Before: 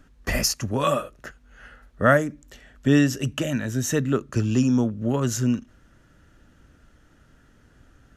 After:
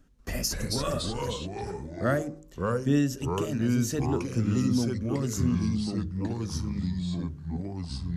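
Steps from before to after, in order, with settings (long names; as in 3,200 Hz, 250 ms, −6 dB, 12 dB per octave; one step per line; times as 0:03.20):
delay with pitch and tempo change per echo 189 ms, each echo −3 semitones, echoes 3
parametric band 1,600 Hz −7.5 dB 2.5 octaves
hum removal 51.82 Hz, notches 11
level −5 dB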